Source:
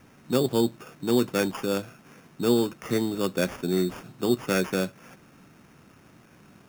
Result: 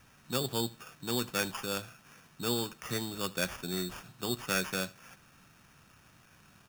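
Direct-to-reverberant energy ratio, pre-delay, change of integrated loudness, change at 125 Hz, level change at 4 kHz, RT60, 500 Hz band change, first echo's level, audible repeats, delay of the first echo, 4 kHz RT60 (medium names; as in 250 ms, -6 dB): no reverb, no reverb, -7.5 dB, -7.5 dB, -0.5 dB, no reverb, -11.5 dB, -22.0 dB, 2, 78 ms, no reverb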